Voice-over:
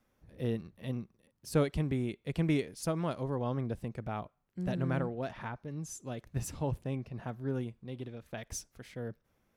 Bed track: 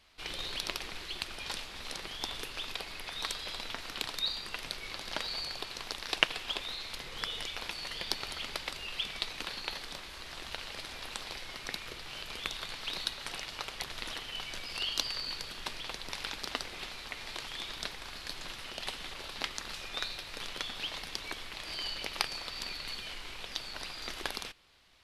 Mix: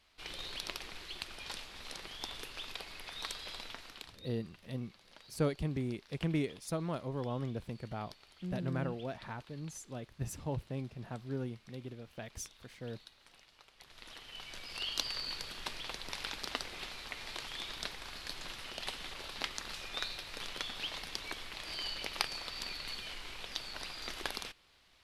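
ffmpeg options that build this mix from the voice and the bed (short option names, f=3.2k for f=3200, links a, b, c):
-filter_complex "[0:a]adelay=3850,volume=-3.5dB[a];[1:a]volume=14.5dB,afade=t=out:st=3.59:d=0.61:silence=0.149624,afade=t=in:st=13.75:d=1.41:silence=0.105925[b];[a][b]amix=inputs=2:normalize=0"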